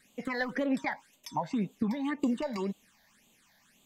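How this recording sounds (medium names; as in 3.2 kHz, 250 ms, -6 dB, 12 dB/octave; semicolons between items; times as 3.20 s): phasing stages 8, 1.9 Hz, lowest notch 350–1700 Hz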